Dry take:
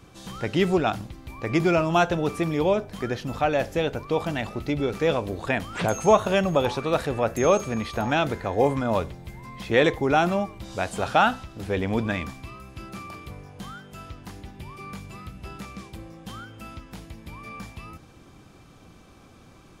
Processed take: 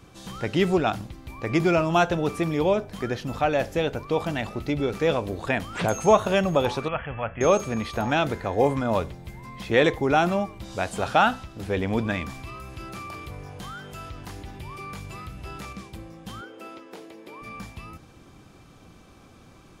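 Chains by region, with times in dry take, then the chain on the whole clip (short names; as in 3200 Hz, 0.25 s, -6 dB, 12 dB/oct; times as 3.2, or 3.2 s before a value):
6.88–7.41 brick-wall FIR low-pass 3400 Hz + bell 350 Hz -15 dB 1.4 oct
12.3–15.73 bell 210 Hz -6.5 dB 0.58 oct + fast leveller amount 50%
16.41–17.42 resonant high-pass 400 Hz, resonance Q 3.5 + high shelf 5100 Hz -5.5 dB
whole clip: dry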